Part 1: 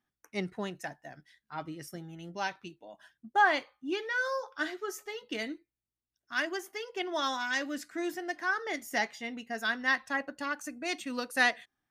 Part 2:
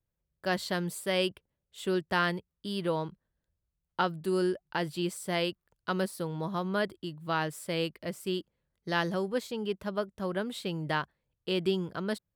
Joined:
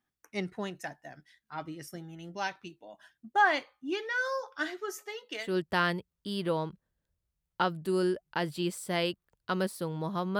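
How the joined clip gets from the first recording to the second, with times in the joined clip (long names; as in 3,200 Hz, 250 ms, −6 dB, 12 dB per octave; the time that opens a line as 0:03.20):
part 1
0:04.98–0:05.57: high-pass filter 230 Hz → 660 Hz
0:05.47: continue with part 2 from 0:01.86, crossfade 0.20 s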